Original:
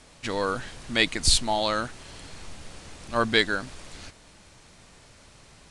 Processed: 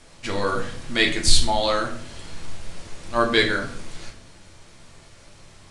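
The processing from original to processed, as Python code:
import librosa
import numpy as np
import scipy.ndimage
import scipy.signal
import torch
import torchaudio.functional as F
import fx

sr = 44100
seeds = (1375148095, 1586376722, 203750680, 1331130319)

y = fx.room_shoebox(x, sr, seeds[0], volume_m3=72.0, walls='mixed', distance_m=0.72)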